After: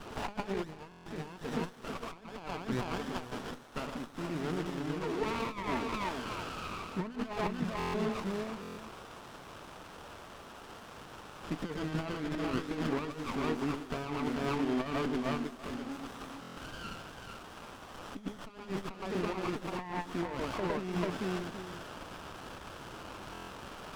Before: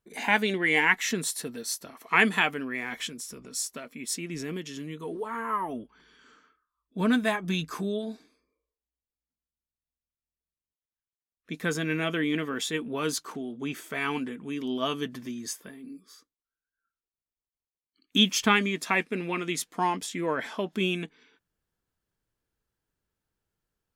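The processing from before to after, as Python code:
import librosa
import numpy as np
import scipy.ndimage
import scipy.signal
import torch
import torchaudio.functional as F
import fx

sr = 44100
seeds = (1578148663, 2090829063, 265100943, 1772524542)

y = x + 0.5 * 10.0 ** (-21.5 / 20.0) * np.diff(np.sign(x), prepend=np.sign(x[:1]))
y = fx.mod_noise(y, sr, seeds[0], snr_db=13)
y = fx.peak_eq(y, sr, hz=1300.0, db=7.0, octaves=1.2)
y = fx.echo_multitap(y, sr, ms=(106, 113, 440, 770), db=(-13.0, -7.0, -6.0, -16.0))
y = fx.over_compress(y, sr, threshold_db=-27.0, ratio=-0.5)
y = scipy.signal.sosfilt(scipy.signal.butter(2, 2400.0, 'lowpass', fs=sr, output='sos'), y)
y = y + 10.0 ** (-23.0 / 20.0) * np.pad(y, (int(214 * sr / 1000.0), 0))[:len(y)]
y = fx.buffer_glitch(y, sr, at_s=(0.9, 7.78, 8.61, 16.41, 23.33), block=1024, repeats=6)
y = fx.running_max(y, sr, window=17)
y = F.gain(torch.from_numpy(y), -3.5).numpy()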